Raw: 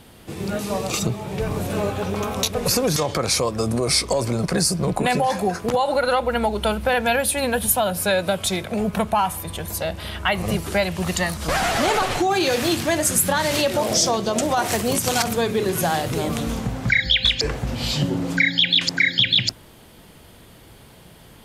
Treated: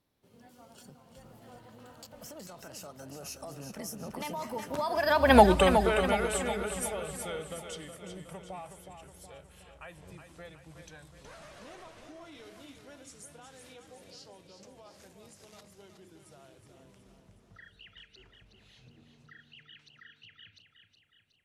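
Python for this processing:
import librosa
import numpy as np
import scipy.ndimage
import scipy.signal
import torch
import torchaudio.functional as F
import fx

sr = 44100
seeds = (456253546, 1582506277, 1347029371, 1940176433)

y = fx.doppler_pass(x, sr, speed_mps=57, closest_m=5.5, pass_at_s=5.4)
y = fx.echo_feedback(y, sr, ms=368, feedback_pct=53, wet_db=-8.0)
y = y * librosa.db_to_amplitude(5.0)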